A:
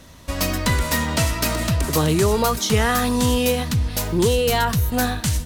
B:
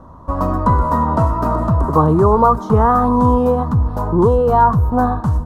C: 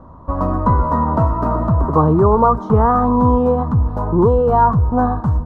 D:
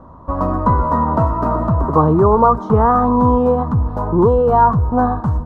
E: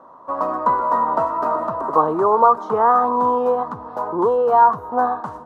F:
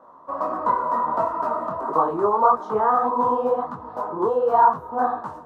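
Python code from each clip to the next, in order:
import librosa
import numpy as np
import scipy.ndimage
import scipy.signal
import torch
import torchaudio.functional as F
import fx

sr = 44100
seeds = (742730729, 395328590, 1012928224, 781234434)

y1 = fx.curve_eq(x, sr, hz=(610.0, 1100.0, 2200.0), db=(0, 9, -29))
y1 = F.gain(torch.from_numpy(y1), 5.5).numpy()
y2 = fx.lowpass(y1, sr, hz=1700.0, slope=6)
y3 = fx.low_shelf(y2, sr, hz=180.0, db=-3.5)
y3 = F.gain(torch.from_numpy(y3), 1.5).numpy()
y4 = scipy.signal.sosfilt(scipy.signal.butter(2, 500.0, 'highpass', fs=sr, output='sos'), y3)
y5 = fx.detune_double(y4, sr, cents=53)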